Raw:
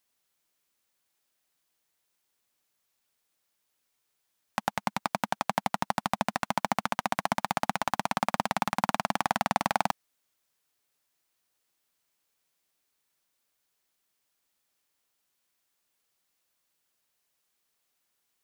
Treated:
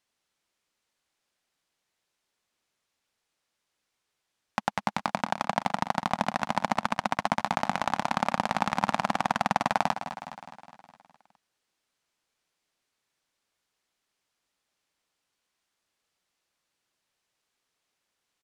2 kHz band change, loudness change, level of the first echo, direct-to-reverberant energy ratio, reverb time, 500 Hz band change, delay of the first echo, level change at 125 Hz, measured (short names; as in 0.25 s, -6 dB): +1.5 dB, +1.5 dB, -11.5 dB, none, none, +1.5 dB, 0.207 s, +2.0 dB